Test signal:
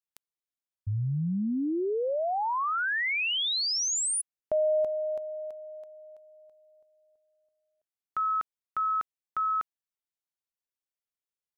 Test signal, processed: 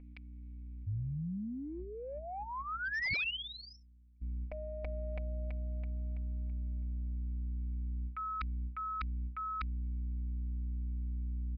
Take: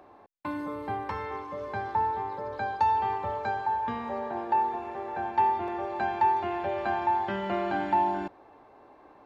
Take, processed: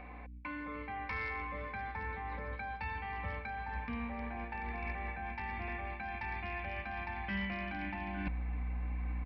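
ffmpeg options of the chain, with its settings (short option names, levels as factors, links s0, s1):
-af "aeval=exprs='val(0)+0.00355*(sin(2*PI*60*n/s)+sin(2*PI*2*60*n/s)/2+sin(2*PI*3*60*n/s)/3+sin(2*PI*4*60*n/s)/4+sin(2*PI*5*60*n/s)/5)':c=same,aemphasis=mode=production:type=75fm,aecho=1:1:4:0.69,areverse,acompressor=threshold=0.0126:ratio=10:attack=9.9:release=201:knee=1:detection=peak,areverse,lowpass=f=2300:t=q:w=11,aresample=11025,asoftclip=type=hard:threshold=0.0299,aresample=44100,asubboost=boost=7.5:cutoff=160,volume=0.794"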